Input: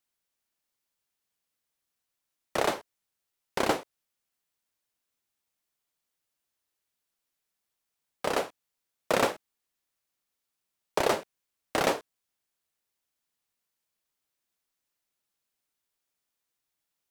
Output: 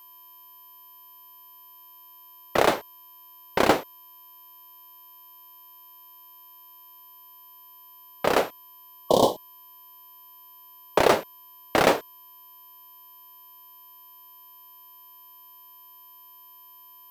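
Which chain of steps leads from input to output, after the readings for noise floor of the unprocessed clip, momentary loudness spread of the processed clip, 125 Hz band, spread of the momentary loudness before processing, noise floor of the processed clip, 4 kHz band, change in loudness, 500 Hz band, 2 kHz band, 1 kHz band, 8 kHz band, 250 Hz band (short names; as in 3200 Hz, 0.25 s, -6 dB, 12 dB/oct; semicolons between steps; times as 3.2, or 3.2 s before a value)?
-85 dBFS, 10 LU, +7.0 dB, 10 LU, -50 dBFS, +5.5 dB, +6.5 dB, +7.0 dB, +5.5 dB, +6.5 dB, +3.0 dB, +7.0 dB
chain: low-pass opened by the level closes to 2600 Hz; spectral delete 8.93–9.56, 1100–2900 Hz; whine 13000 Hz -51 dBFS; in parallel at -6 dB: sample-rate reducer 14000 Hz, jitter 0%; on the sum: gain +3.5 dB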